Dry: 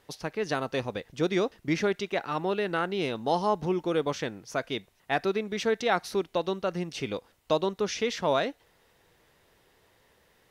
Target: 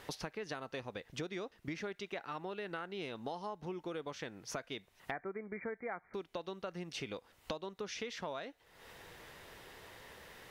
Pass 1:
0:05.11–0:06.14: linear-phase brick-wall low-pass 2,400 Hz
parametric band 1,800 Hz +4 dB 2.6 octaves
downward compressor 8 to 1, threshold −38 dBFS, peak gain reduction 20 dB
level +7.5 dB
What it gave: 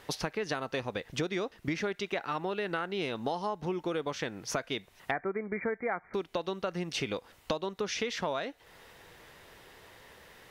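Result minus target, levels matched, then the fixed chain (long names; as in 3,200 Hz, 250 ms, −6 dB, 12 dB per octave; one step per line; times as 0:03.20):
downward compressor: peak gain reduction −9 dB
0:05.11–0:06.14: linear-phase brick-wall low-pass 2,400 Hz
parametric band 1,800 Hz +4 dB 2.6 octaves
downward compressor 8 to 1, threshold −48 dBFS, peak gain reduction 29 dB
level +7.5 dB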